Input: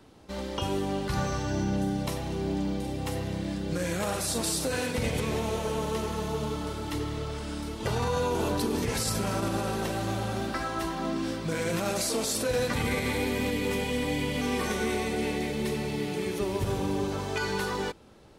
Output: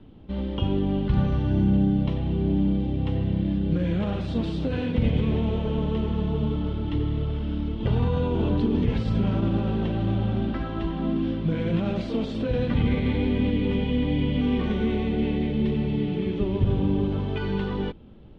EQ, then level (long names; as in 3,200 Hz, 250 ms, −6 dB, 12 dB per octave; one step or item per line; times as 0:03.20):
low-pass with resonance 3,200 Hz, resonance Q 4.4
spectral tilt −4 dB per octave
parametric band 220 Hz +6 dB 1.3 octaves
−6.0 dB